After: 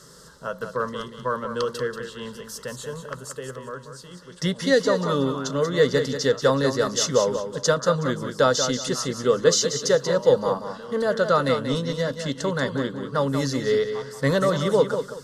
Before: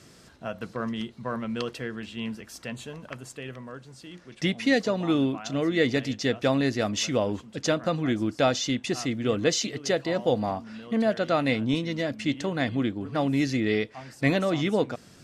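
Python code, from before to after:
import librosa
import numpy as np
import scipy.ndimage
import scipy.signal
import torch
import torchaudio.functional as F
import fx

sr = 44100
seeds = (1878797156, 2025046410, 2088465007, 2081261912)

p1 = fx.peak_eq(x, sr, hz=220.0, db=-15.0, octaves=0.36)
p2 = fx.fixed_phaser(p1, sr, hz=480.0, stages=8)
p3 = p2 + fx.echo_feedback(p2, sr, ms=185, feedback_pct=26, wet_db=-8.5, dry=0)
y = p3 * 10.0 ** (8.5 / 20.0)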